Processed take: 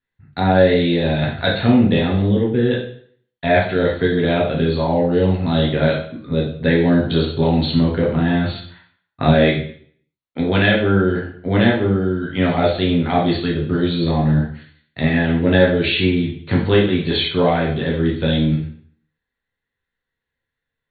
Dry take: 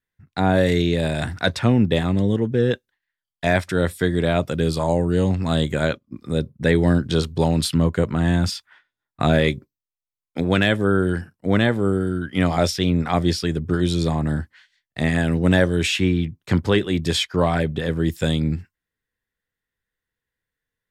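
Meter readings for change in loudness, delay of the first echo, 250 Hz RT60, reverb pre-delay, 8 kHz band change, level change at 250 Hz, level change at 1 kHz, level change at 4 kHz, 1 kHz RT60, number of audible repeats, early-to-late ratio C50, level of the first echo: +3.5 dB, no echo, 0.60 s, 5 ms, under -40 dB, +3.5 dB, +4.0 dB, +3.0 dB, 0.55 s, no echo, 5.0 dB, no echo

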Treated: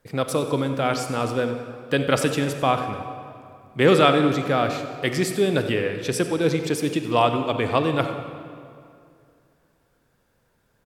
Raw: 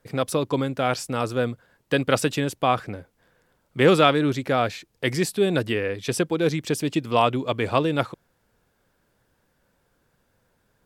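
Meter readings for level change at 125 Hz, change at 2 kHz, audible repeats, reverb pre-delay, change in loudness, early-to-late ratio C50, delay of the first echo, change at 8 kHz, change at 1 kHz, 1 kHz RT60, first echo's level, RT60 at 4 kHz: +1.0 dB, +1.0 dB, 2, 31 ms, +1.0 dB, 7.0 dB, 93 ms, +0.5 dB, +1.0 dB, 2.4 s, -14.5 dB, 1.6 s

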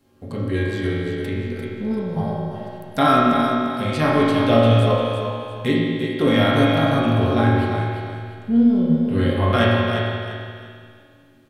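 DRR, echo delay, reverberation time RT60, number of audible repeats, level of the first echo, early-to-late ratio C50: -9.0 dB, 346 ms, 2.2 s, 2, -5.5 dB, -3.5 dB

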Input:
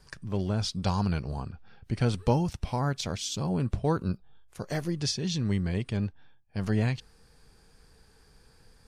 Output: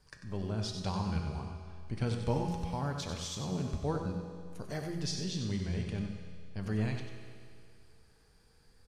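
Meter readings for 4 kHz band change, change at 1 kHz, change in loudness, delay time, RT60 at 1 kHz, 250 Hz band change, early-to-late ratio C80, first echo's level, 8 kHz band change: -6.0 dB, -6.0 dB, -6.0 dB, 94 ms, 2.2 s, -6.0 dB, 4.0 dB, -8.5 dB, -6.0 dB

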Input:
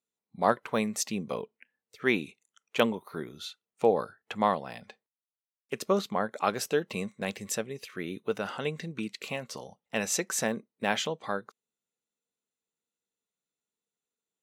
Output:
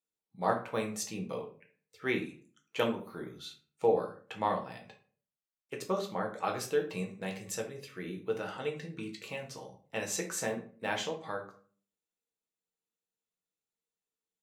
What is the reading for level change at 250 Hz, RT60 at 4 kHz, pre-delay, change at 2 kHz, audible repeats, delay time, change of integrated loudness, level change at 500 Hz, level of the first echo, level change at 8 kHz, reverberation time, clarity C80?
-5.5 dB, 0.30 s, 6 ms, -5.0 dB, no echo, no echo, -4.5 dB, -3.5 dB, no echo, -5.5 dB, 0.45 s, 15.0 dB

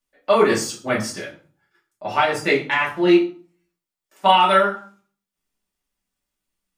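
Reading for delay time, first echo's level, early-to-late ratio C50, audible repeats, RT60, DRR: no echo, no echo, 9.5 dB, no echo, 0.45 s, -5.0 dB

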